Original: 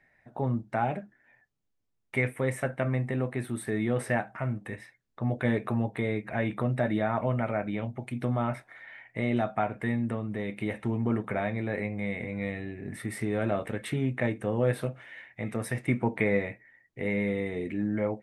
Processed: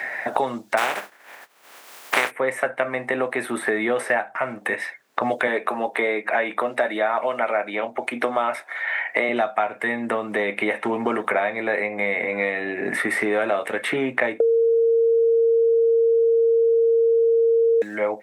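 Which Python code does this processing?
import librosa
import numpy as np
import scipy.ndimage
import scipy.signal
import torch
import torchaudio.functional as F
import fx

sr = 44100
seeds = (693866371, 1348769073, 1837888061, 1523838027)

y = fx.spec_flatten(x, sr, power=0.29, at=(0.77, 2.3), fade=0.02)
y = fx.highpass(y, sr, hz=240.0, slope=12, at=(5.47, 9.29))
y = fx.edit(y, sr, fx.bleep(start_s=14.4, length_s=3.42, hz=459.0, db=-15.0), tone=tone)
y = scipy.signal.sosfilt(scipy.signal.butter(2, 560.0, 'highpass', fs=sr, output='sos'), y)
y = fx.band_squash(y, sr, depth_pct=100)
y = F.gain(torch.from_numpy(y), 8.0).numpy()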